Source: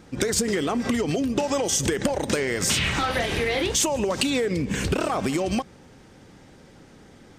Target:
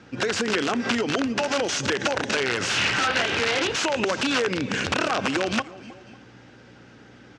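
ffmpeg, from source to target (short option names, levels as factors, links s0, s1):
-filter_complex "[0:a]asplit=2[s0][s1];[s1]aecho=0:1:548:0.0668[s2];[s0][s2]amix=inputs=2:normalize=0,aeval=exprs='val(0)+0.00501*(sin(2*PI*60*n/s)+sin(2*PI*2*60*n/s)/2+sin(2*PI*3*60*n/s)/3+sin(2*PI*4*60*n/s)/4+sin(2*PI*5*60*n/s)/5)':c=same,asplit=2[s3][s4];[s4]aecho=0:1:314|628:0.119|0.0238[s5];[s3][s5]amix=inputs=2:normalize=0,aeval=exprs='(mod(7.08*val(0)+1,2)-1)/7.08':c=same,highpass=f=100:w=0.5412,highpass=f=100:w=1.3066,equalizer=f=160:t=q:w=4:g=-8,equalizer=f=1500:t=q:w=4:g=8,equalizer=f=2700:t=q:w=4:g=6,lowpass=f=6300:w=0.5412,lowpass=f=6300:w=1.3066"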